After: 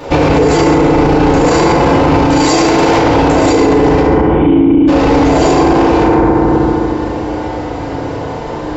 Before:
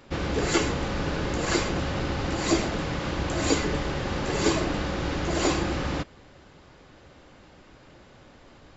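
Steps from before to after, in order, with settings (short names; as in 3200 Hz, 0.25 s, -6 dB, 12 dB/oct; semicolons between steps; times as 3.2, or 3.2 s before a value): rattling part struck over -29 dBFS, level -27 dBFS; 2.3–2.98 tilt +2.5 dB/oct; 4.01–4.88 vocal tract filter i; band shelf 620 Hz +8 dB; FDN reverb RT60 2.2 s, low-frequency decay 1.5×, high-frequency decay 0.3×, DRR -8.5 dB; maximiser +17.5 dB; gain -1 dB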